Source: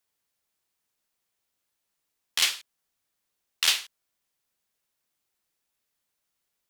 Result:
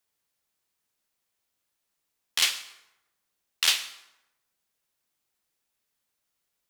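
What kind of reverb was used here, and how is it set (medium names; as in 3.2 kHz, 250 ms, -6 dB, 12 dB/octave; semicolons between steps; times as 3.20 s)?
plate-style reverb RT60 0.94 s, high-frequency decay 0.65×, pre-delay 90 ms, DRR 15.5 dB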